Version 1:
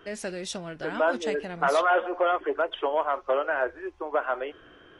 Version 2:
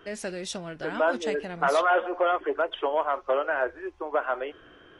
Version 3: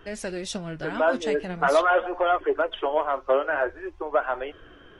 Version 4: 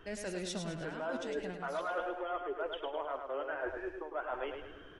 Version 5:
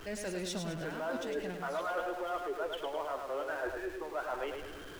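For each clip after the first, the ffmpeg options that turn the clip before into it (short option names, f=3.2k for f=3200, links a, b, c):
-af anull
-af "lowshelf=f=110:g=11,flanger=delay=1.1:depth=6.5:regen=65:speed=0.46:shape=sinusoidal,volume=5.5dB"
-af "areverse,acompressor=threshold=-30dB:ratio=10,areverse,aecho=1:1:105|210|315|420|525:0.501|0.221|0.097|0.0427|0.0188,volume=-5dB"
-af "aeval=exprs='val(0)+0.5*0.00501*sgn(val(0))':c=same"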